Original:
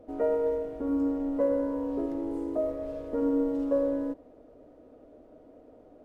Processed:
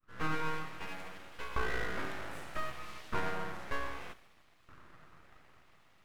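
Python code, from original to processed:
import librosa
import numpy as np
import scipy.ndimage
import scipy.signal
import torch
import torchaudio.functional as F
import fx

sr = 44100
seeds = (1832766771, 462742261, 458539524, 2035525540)

p1 = fx.fade_in_head(x, sr, length_s=0.82)
p2 = fx.rider(p1, sr, range_db=5, speed_s=0.5)
p3 = fx.filter_lfo_highpass(p2, sr, shape='saw_up', hz=0.64, low_hz=870.0, high_hz=1900.0, q=2.0)
p4 = p3 + fx.echo_wet_highpass(p3, sr, ms=70, feedback_pct=71, hz=1700.0, wet_db=-11, dry=0)
p5 = np.abs(p4)
y = F.gain(torch.from_numpy(p5), 7.0).numpy()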